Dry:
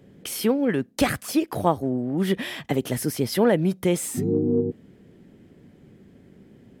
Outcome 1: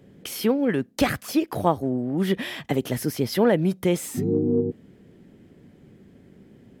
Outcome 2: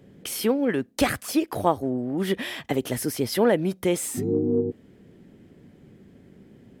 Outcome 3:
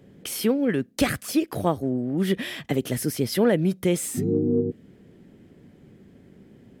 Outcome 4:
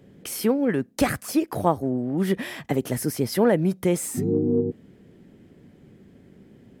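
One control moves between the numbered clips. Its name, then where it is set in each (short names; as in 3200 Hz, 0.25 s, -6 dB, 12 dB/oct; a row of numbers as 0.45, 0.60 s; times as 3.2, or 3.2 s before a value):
dynamic EQ, frequency: 9000, 160, 890, 3300 Hz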